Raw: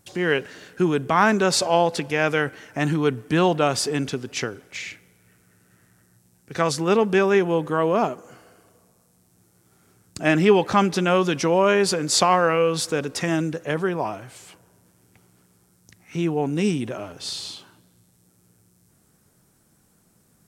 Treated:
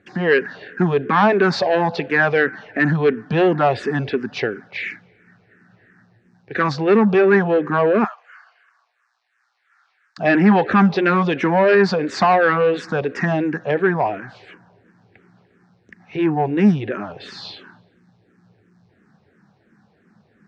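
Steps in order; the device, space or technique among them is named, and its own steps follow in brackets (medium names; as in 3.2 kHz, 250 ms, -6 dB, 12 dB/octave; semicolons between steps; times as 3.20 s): 8.04–10.18 s: high-pass 1.1 kHz 24 dB/octave; barber-pole phaser into a guitar amplifier (barber-pole phaser -2.9 Hz; saturation -18 dBFS, distortion -13 dB; cabinet simulation 100–3900 Hz, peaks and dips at 210 Hz +6 dB, 410 Hz +3 dB, 750 Hz +4 dB, 1.7 kHz +9 dB, 3.2 kHz -6 dB); trim +7 dB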